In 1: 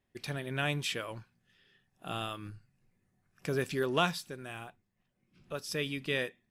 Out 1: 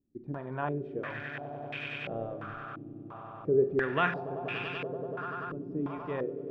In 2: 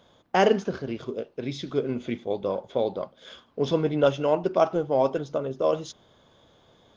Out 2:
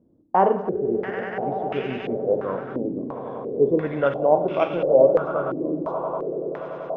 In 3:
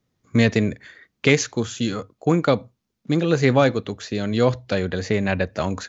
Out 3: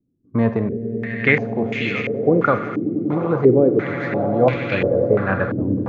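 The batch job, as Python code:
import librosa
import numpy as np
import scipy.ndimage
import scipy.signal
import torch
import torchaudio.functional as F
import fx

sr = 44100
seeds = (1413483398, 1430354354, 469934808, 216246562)

y = fx.echo_swell(x, sr, ms=96, loudest=8, wet_db=-15)
y = fx.rev_schroeder(y, sr, rt60_s=0.55, comb_ms=31, drr_db=10.0)
y = fx.filter_held_lowpass(y, sr, hz=2.9, low_hz=300.0, high_hz=2500.0)
y = F.gain(torch.from_numpy(y), -2.5).numpy()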